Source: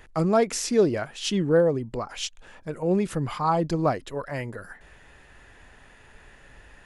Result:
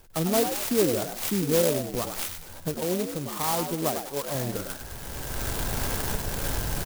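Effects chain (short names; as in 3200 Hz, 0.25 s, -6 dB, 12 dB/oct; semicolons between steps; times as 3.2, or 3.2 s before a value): nonlinear frequency compression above 1300 Hz 1.5:1; recorder AGC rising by 19 dB/s; 2.77–4.35 low shelf 130 Hz -12 dB; frequency-shifting echo 99 ms, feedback 32%, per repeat +74 Hz, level -7 dB; clock jitter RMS 0.14 ms; gain -3.5 dB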